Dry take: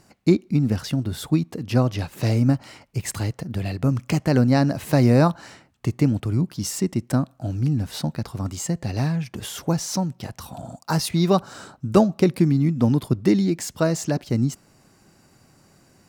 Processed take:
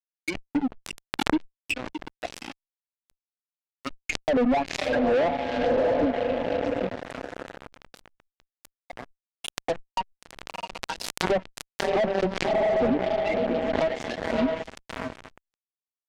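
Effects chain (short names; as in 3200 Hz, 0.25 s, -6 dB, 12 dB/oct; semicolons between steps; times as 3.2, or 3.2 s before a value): per-bin expansion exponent 2; wah 1.3 Hz 470–2500 Hz, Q 7; rippled Chebyshev high-pass 180 Hz, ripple 9 dB; on a send: diffused feedback echo 0.654 s, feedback 49%, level -8.5 dB; on the sum: fuzz box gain 51 dB, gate -56 dBFS; treble ducked by the level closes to 2100 Hz, closed at -14 dBFS; dynamic EQ 1300 Hz, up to -7 dB, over -34 dBFS, Q 0.86; backwards sustainer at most 49 dB/s; gain -4.5 dB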